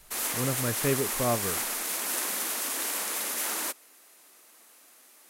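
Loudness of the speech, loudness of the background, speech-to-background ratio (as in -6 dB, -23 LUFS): -31.0 LUFS, -29.0 LUFS, -2.0 dB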